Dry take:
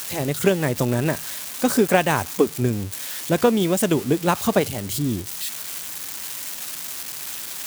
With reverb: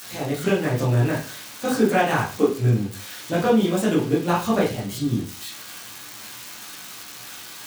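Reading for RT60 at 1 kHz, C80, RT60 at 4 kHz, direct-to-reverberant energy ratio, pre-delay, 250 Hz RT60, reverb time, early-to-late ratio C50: 0.35 s, 12.0 dB, 0.35 s, -7.5 dB, 11 ms, 0.50 s, 0.40 s, 6.5 dB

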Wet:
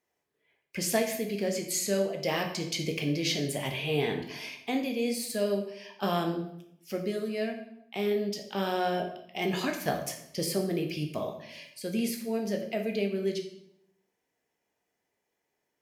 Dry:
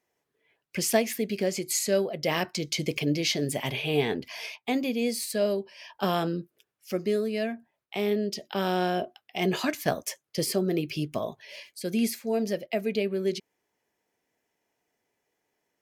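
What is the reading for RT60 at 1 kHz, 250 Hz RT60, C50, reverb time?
0.70 s, 0.90 s, 7.5 dB, 0.75 s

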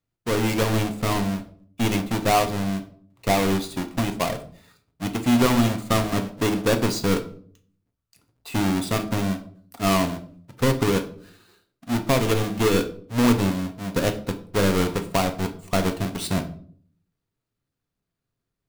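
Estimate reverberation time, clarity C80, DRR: 0.55 s, 17.0 dB, 6.5 dB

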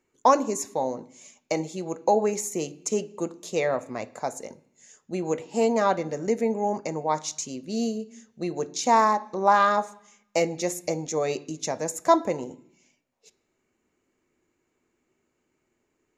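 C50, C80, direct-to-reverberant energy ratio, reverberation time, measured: 20.0 dB, 22.0 dB, 12.0 dB, 0.70 s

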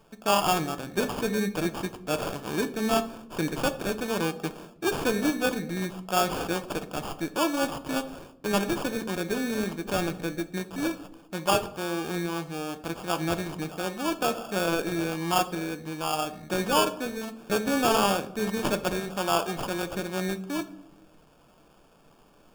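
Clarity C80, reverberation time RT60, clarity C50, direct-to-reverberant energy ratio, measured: 18.0 dB, 0.75 s, 14.5 dB, 8.5 dB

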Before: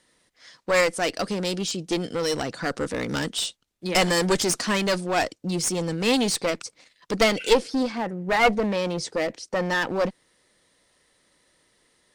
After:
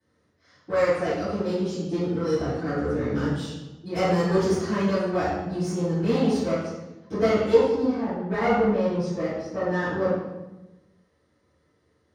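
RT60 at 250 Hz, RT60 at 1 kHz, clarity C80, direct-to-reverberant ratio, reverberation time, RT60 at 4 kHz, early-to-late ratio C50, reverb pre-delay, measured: 1.4 s, 1.0 s, 2.0 dB, -18.0 dB, 1.1 s, 0.80 s, -2.0 dB, 3 ms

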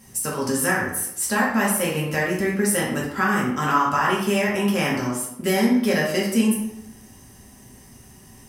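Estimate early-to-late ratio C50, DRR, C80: 3.0 dB, -5.5 dB, 6.5 dB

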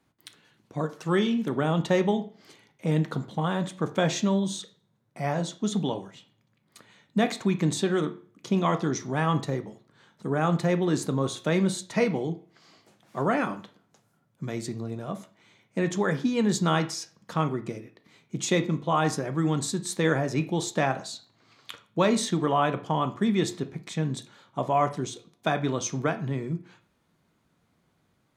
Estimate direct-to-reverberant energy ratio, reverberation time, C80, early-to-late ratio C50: 9.0 dB, 0.40 s, 19.5 dB, 15.5 dB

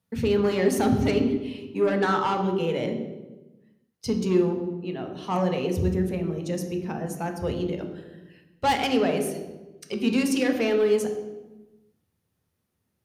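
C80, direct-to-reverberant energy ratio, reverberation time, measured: 9.0 dB, 3.5 dB, 1.1 s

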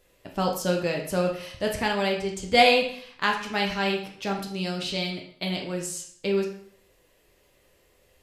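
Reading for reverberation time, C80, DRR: 0.60 s, 10.5 dB, 0.5 dB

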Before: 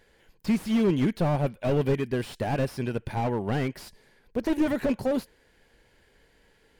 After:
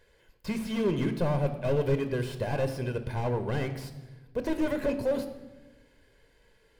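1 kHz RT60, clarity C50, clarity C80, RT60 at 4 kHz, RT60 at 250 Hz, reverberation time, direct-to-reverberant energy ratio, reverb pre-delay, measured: 1.0 s, 11.0 dB, 13.0 dB, 0.90 s, 1.6 s, 1.1 s, 9.0 dB, 24 ms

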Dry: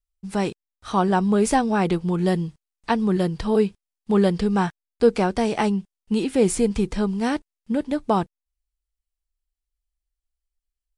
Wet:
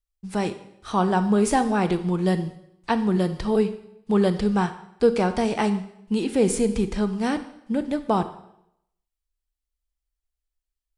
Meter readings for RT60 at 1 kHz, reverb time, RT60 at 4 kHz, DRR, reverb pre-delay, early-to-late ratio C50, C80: 0.75 s, 0.75 s, 0.70 s, 10.5 dB, 24 ms, 12.5 dB, 15.0 dB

